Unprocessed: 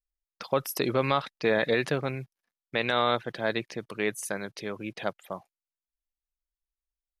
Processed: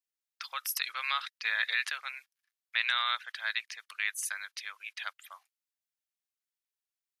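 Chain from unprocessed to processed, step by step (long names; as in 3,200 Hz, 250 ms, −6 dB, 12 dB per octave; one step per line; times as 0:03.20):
high-pass filter 1,400 Hz 24 dB per octave
level +1.5 dB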